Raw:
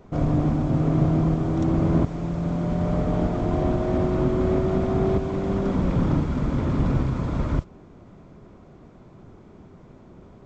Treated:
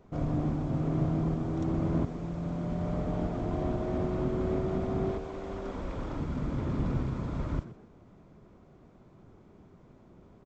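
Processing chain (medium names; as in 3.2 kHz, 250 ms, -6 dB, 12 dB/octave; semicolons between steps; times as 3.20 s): 5.11–6.20 s: peaking EQ 150 Hz -14 dB 1.5 oct; frequency-shifting echo 124 ms, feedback 31%, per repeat +78 Hz, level -15 dB; trim -8.5 dB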